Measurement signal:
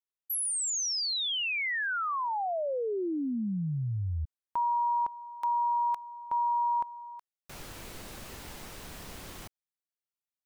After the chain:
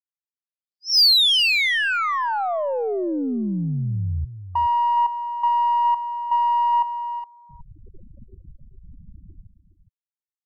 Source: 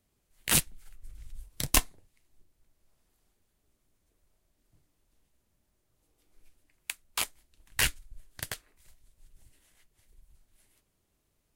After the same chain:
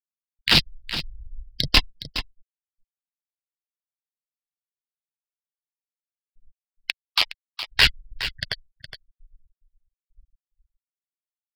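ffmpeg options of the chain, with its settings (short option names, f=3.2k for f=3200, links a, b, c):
-filter_complex "[0:a]aemphasis=mode=production:type=50fm,afftfilt=real='re*gte(hypot(re,im),0.0251)':imag='im*gte(hypot(re,im),0.0251)':win_size=1024:overlap=0.75,aresample=11025,aeval=exprs='0.447*sin(PI/2*2.24*val(0)/0.447)':c=same,aresample=44100,aeval=exprs='0.708*(cos(1*acos(clip(val(0)/0.708,-1,1)))-cos(1*PI/2))+0.00631*(cos(6*acos(clip(val(0)/0.708,-1,1)))-cos(6*PI/2))+0.0251*(cos(7*acos(clip(val(0)/0.708,-1,1)))-cos(7*PI/2))':c=same,highshelf=f=4.3k:g=9,asplit=2[a][b];[b]aecho=0:1:415:0.251[c];[a][c]amix=inputs=2:normalize=0,volume=-1.5dB"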